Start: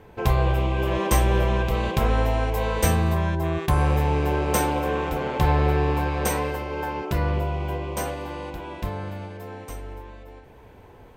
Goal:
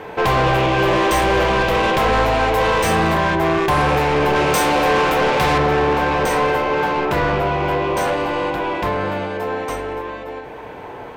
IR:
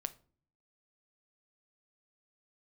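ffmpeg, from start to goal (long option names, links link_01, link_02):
-filter_complex "[0:a]asetnsamples=nb_out_samples=441:pad=0,asendcmd='4.36 lowpass f 4900;5.58 lowpass f 1700',asplit=2[link_01][link_02];[link_02]highpass=frequency=720:poles=1,volume=29dB,asoftclip=type=tanh:threshold=-7dB[link_03];[link_01][link_03]amix=inputs=2:normalize=0,lowpass=frequency=2600:poles=1,volume=-6dB[link_04];[1:a]atrim=start_sample=2205[link_05];[link_04][link_05]afir=irnorm=-1:irlink=0"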